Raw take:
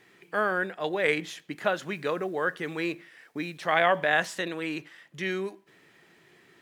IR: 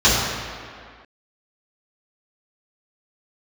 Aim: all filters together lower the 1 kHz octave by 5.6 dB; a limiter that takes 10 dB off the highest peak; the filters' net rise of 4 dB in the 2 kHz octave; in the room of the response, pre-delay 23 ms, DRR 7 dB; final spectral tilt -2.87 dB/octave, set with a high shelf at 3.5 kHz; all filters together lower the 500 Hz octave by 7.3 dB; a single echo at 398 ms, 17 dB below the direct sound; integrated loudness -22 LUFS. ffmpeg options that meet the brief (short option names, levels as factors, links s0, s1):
-filter_complex "[0:a]equalizer=f=500:t=o:g=-7.5,equalizer=f=1000:t=o:g=-8.5,equalizer=f=2000:t=o:g=6,highshelf=f=3500:g=8,alimiter=limit=0.15:level=0:latency=1,aecho=1:1:398:0.141,asplit=2[s0][s1];[1:a]atrim=start_sample=2205,adelay=23[s2];[s1][s2]afir=irnorm=-1:irlink=0,volume=0.0282[s3];[s0][s3]amix=inputs=2:normalize=0,volume=2.37"